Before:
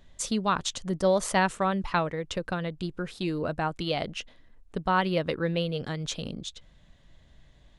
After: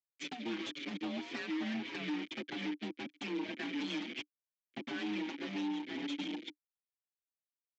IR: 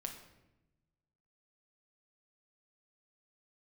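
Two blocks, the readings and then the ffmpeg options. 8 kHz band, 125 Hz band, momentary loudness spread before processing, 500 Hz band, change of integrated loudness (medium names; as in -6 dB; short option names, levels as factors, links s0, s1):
-20.0 dB, -20.0 dB, 11 LU, -17.5 dB, -10.5 dB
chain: -filter_complex "[0:a]aecho=1:1:1.2:0.78,asplit=2[s0][s1];[s1]asplit=4[s2][s3][s4][s5];[s2]adelay=136,afreqshift=100,volume=0.316[s6];[s3]adelay=272,afreqshift=200,volume=0.114[s7];[s4]adelay=408,afreqshift=300,volume=0.0412[s8];[s5]adelay=544,afreqshift=400,volume=0.0148[s9];[s6][s7][s8][s9]amix=inputs=4:normalize=0[s10];[s0][s10]amix=inputs=2:normalize=0,acrusher=bits=4:mix=0:aa=0.000001,agate=range=0.0224:threshold=0.0447:ratio=3:detection=peak,asplit=3[s11][s12][s13];[s11]bandpass=f=270:t=q:w=8,volume=1[s14];[s12]bandpass=f=2290:t=q:w=8,volume=0.501[s15];[s13]bandpass=f=3010:t=q:w=8,volume=0.355[s16];[s14][s15][s16]amix=inputs=3:normalize=0,acompressor=threshold=0.00501:ratio=6,afreqshift=27,aresample=16000,aeval=exprs='0.0158*sin(PI/2*2.82*val(0)/0.0158)':c=same,aresample=44100,acompressor=mode=upward:threshold=0.00224:ratio=2.5,highpass=180,lowpass=4500,asplit=2[s17][s18];[s18]adelay=5.8,afreqshift=1.7[s19];[s17][s19]amix=inputs=2:normalize=1,volume=1.68"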